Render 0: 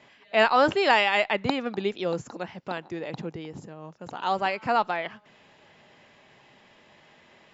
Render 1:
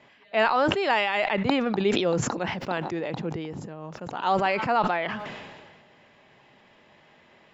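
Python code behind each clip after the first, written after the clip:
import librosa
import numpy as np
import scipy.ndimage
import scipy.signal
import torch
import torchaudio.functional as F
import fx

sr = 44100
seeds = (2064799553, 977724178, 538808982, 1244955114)

y = fx.rider(x, sr, range_db=3, speed_s=0.5)
y = fx.high_shelf(y, sr, hz=5200.0, db=-9.0)
y = fx.sustainer(y, sr, db_per_s=34.0)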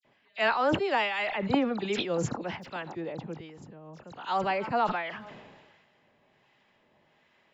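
y = fx.harmonic_tremolo(x, sr, hz=1.3, depth_pct=50, crossover_hz=980.0)
y = fx.dispersion(y, sr, late='lows', ms=48.0, hz=2900.0)
y = fx.upward_expand(y, sr, threshold_db=-36.0, expansion=1.5)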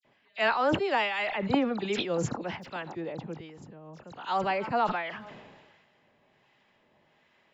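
y = x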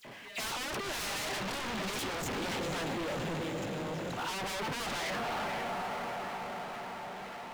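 y = fx.echo_diffused(x, sr, ms=513, feedback_pct=55, wet_db=-10.0)
y = fx.power_curve(y, sr, exponent=0.5)
y = 10.0 ** (-24.5 / 20.0) * (np.abs((y / 10.0 ** (-24.5 / 20.0) + 3.0) % 4.0 - 2.0) - 1.0)
y = y * 10.0 ** (-7.5 / 20.0)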